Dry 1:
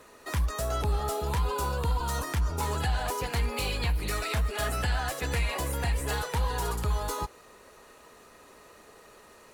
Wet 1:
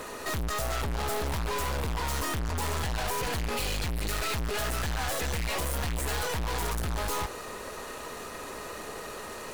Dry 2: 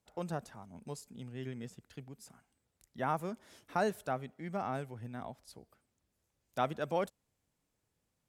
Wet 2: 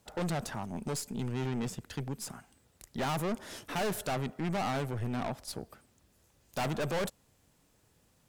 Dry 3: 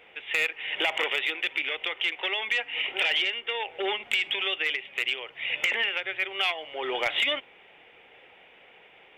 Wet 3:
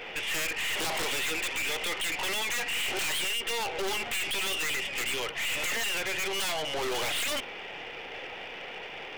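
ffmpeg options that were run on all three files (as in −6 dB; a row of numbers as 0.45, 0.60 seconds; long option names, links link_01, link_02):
-af "bandreject=frequency=2200:width=23,aeval=exprs='0.211*sin(PI/2*3.98*val(0)/0.211)':channel_layout=same,aeval=exprs='(tanh(31.6*val(0)+0.45)-tanh(0.45))/31.6':channel_layout=same"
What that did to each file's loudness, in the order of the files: −1.5, +3.0, −3.0 LU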